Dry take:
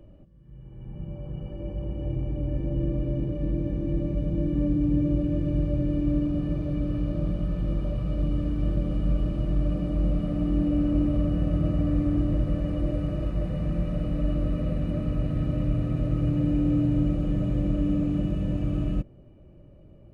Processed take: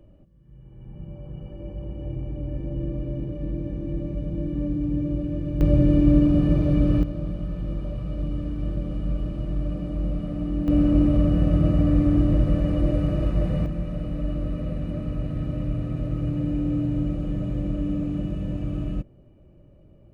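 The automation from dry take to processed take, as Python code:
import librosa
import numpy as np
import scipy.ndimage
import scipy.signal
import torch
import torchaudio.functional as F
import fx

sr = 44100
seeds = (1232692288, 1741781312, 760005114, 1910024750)

y = fx.gain(x, sr, db=fx.steps((0.0, -2.0), (5.61, 8.0), (7.03, -2.0), (10.68, 5.0), (13.66, -1.5)))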